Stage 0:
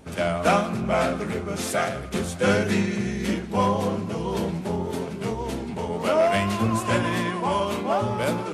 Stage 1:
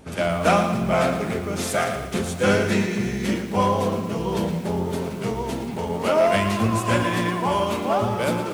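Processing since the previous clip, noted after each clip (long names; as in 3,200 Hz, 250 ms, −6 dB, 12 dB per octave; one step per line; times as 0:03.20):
feedback echo at a low word length 114 ms, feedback 55%, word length 7 bits, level −10 dB
level +1.5 dB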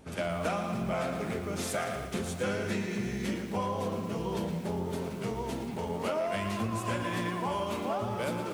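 downward compressor, threshold −21 dBFS, peak gain reduction 8 dB
level −7 dB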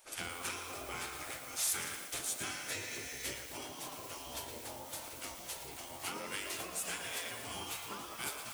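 gate on every frequency bin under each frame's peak −10 dB weak
first-order pre-emphasis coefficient 0.8
level +7 dB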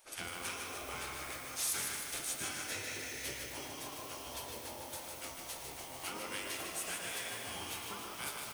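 notch filter 7,400 Hz, Q 16
repeating echo 152 ms, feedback 59%, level −5.5 dB
level −1.5 dB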